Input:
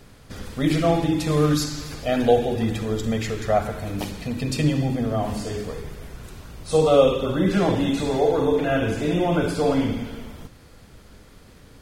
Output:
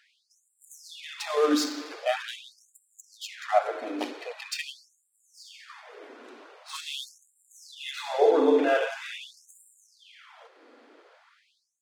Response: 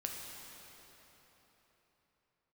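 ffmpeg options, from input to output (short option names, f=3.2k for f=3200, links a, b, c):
-af "adynamicsmooth=sensitivity=5.5:basefreq=2.8k,afftfilt=real='re*gte(b*sr/1024,220*pow(7300/220,0.5+0.5*sin(2*PI*0.44*pts/sr)))':imag='im*gte(b*sr/1024,220*pow(7300/220,0.5+0.5*sin(2*PI*0.44*pts/sr)))':win_size=1024:overlap=0.75"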